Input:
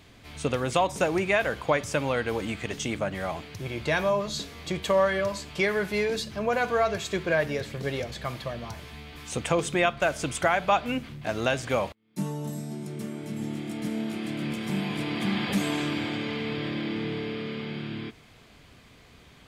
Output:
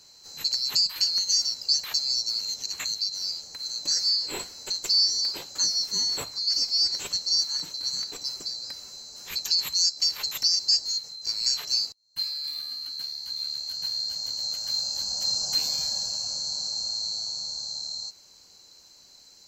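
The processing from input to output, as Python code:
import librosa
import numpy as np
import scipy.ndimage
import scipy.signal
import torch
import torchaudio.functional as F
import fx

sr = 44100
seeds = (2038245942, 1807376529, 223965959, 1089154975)

y = fx.band_swap(x, sr, width_hz=4000)
y = fx.notch(y, sr, hz=660.0, q=12.0)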